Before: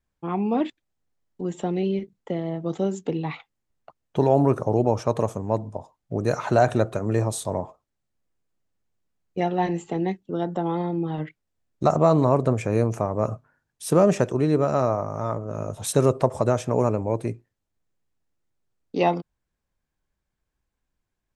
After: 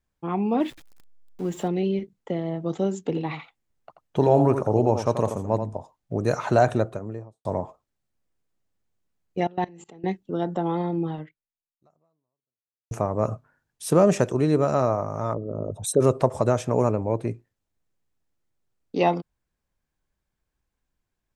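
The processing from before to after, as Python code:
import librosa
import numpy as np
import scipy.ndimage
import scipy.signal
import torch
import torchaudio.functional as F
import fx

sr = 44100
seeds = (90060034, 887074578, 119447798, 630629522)

y = fx.zero_step(x, sr, step_db=-42.0, at=(0.6, 1.68))
y = fx.echo_single(y, sr, ms=84, db=-8.5, at=(3.05, 5.74))
y = fx.studio_fade_out(y, sr, start_s=6.56, length_s=0.89)
y = fx.level_steps(y, sr, step_db=23, at=(9.44, 10.04))
y = fx.high_shelf(y, sr, hz=5600.0, db=4.5, at=(14.06, 14.75))
y = fx.envelope_sharpen(y, sr, power=2.0, at=(15.33, 16.0), fade=0.02)
y = fx.high_shelf(y, sr, hz=5300.0, db=-9.5, at=(16.91, 17.31))
y = fx.edit(y, sr, fx.fade_out_span(start_s=11.08, length_s=1.83, curve='exp'), tone=tone)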